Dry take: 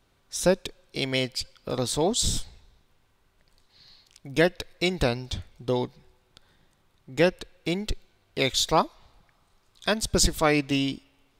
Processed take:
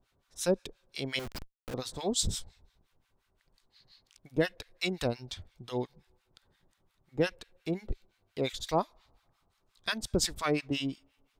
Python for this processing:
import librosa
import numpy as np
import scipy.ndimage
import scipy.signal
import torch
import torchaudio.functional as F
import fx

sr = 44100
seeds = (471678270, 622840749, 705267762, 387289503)

y = fx.harmonic_tremolo(x, sr, hz=5.7, depth_pct=100, crossover_hz=970.0)
y = fx.schmitt(y, sr, flips_db=-42.5, at=(1.19, 1.74))
y = y * librosa.db_to_amplitude(-3.0)